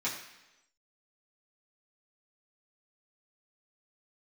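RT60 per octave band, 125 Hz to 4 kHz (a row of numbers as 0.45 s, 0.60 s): 0.85 s, 0.95 s, 1.0 s, 0.95 s, 1.0 s, 1.0 s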